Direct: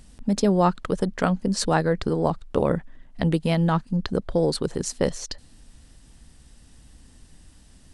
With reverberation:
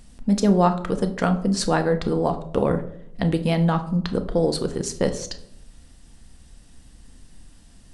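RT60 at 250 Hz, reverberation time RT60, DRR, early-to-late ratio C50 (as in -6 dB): 0.90 s, 0.70 s, 6.5 dB, 13.0 dB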